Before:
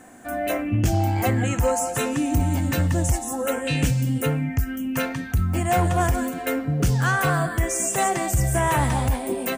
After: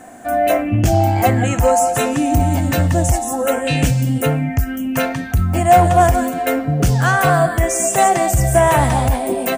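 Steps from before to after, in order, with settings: peaking EQ 680 Hz +8 dB 0.4 oct; trim +5.5 dB

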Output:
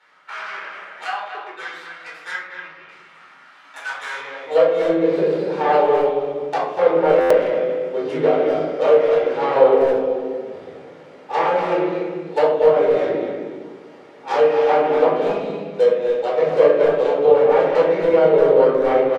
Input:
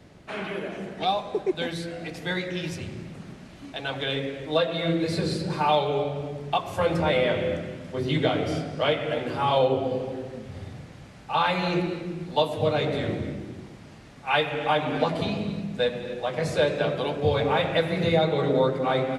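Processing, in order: tracing distortion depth 0.49 ms; low-pass that closes with the level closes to 2.3 kHz, closed at -19.5 dBFS; treble shelf 4.4 kHz -12 dB; high-pass sweep 1.3 kHz -> 440 Hz, 4.10–4.67 s; 2.35–2.89 s: tape spacing loss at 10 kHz 29 dB; speakerphone echo 240 ms, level -7 dB; simulated room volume 620 m³, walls furnished, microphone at 4.4 m; buffer glitch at 7.20 s, samples 512, times 8; trim -2.5 dB

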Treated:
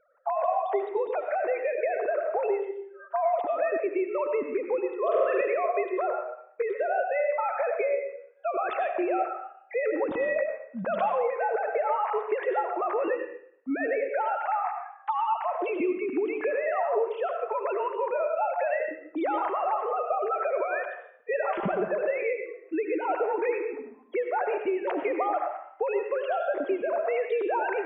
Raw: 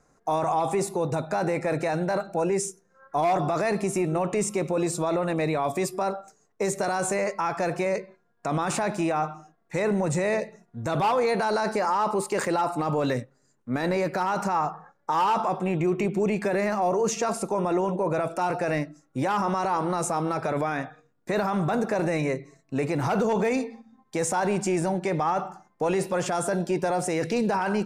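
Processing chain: formants replaced by sine waves; 17.49–18.11 s: high-pass 830 Hz 6 dB/octave; 21.33–21.83 s: comb 5 ms, depth 96%; compression, threshold -29 dBFS, peak gain reduction 14.5 dB; 4.99–5.41 s: flutter echo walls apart 7.8 m, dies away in 1.1 s; on a send at -5 dB: reverberation RT60 0.60 s, pre-delay 55 ms; on the sum: trim +3.5 dB

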